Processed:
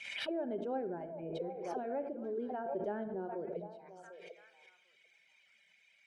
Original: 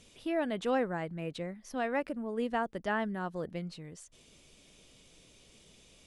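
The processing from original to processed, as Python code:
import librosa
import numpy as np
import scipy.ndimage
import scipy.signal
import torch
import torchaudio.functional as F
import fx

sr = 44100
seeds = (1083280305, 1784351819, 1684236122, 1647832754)

p1 = fx.low_shelf(x, sr, hz=77.0, db=-5.0)
p2 = p1 + 0.6 * np.pad(p1, (int(1.3 * sr / 1000.0), 0))[:len(p1)]
p3 = fx.auto_wah(p2, sr, base_hz=380.0, top_hz=2400.0, q=7.8, full_db=-34.5, direction='down')
p4 = fx.level_steps(p3, sr, step_db=18)
p5 = p3 + (p4 * 10.0 ** (-1.0 / 20.0))
p6 = fx.dereverb_blind(p5, sr, rt60_s=1.2)
p7 = p6 + fx.echo_stepped(p6, sr, ms=747, hz=670.0, octaves=1.4, feedback_pct=70, wet_db=-8, dry=0)
p8 = fx.room_shoebox(p7, sr, seeds[0], volume_m3=2600.0, walls='furnished', distance_m=1.2)
p9 = fx.pre_swell(p8, sr, db_per_s=43.0)
y = p9 * 10.0 ** (7.5 / 20.0)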